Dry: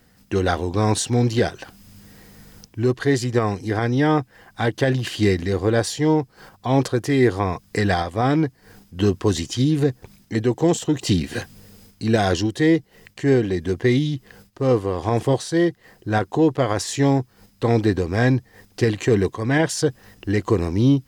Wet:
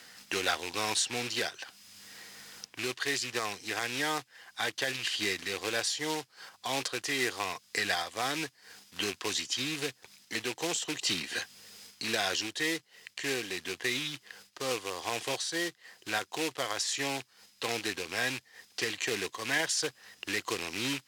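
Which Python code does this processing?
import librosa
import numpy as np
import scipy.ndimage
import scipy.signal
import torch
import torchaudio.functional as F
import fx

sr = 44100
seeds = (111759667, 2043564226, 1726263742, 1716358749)

y = fx.rattle_buzz(x, sr, strikes_db=-21.0, level_db=-24.0)
y = fx.rider(y, sr, range_db=5, speed_s=2.0)
y = fx.quant_float(y, sr, bits=2)
y = fx.bandpass_q(y, sr, hz=4300.0, q=0.62)
y = fx.band_squash(y, sr, depth_pct=40)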